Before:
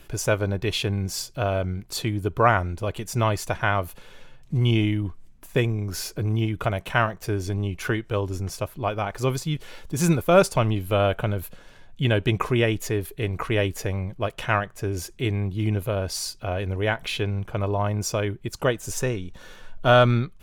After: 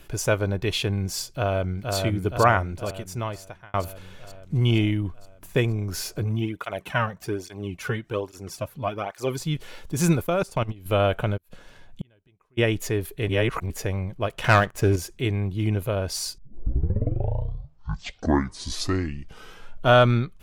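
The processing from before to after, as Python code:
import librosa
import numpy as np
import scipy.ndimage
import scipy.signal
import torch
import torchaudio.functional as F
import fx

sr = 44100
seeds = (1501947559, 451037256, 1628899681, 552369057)

y = fx.echo_throw(x, sr, start_s=1.31, length_s=0.65, ms=470, feedback_pct=65, wet_db=-3.5)
y = fx.flanger_cancel(y, sr, hz=1.2, depth_ms=3.3, at=(6.24, 9.4))
y = fx.level_steps(y, sr, step_db=22, at=(10.26, 10.86))
y = fx.gate_flip(y, sr, shuts_db=-19.0, range_db=-40, at=(11.36, 12.57), fade=0.02)
y = fx.leveller(y, sr, passes=2, at=(14.44, 14.96))
y = fx.edit(y, sr, fx.fade_out_span(start_s=2.54, length_s=1.2),
    fx.reverse_span(start_s=13.29, length_s=0.41),
    fx.tape_start(start_s=16.38, length_s=3.5), tone=tone)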